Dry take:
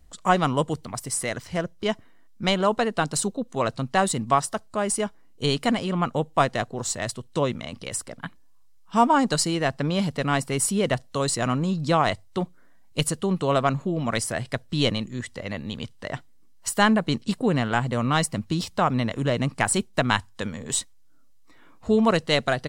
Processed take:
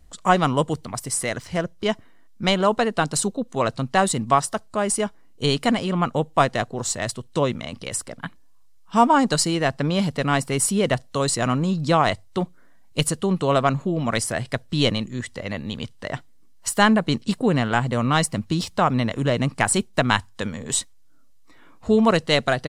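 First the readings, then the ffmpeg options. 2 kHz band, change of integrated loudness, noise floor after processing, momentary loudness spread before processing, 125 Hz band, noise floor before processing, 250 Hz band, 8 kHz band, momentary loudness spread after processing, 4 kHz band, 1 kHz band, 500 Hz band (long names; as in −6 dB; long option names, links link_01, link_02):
+2.5 dB, +2.5 dB, −47 dBFS, 11 LU, +2.5 dB, −50 dBFS, +2.5 dB, +2.5 dB, 11 LU, +2.5 dB, +2.5 dB, +2.5 dB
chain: -af "aresample=32000,aresample=44100,volume=2.5dB"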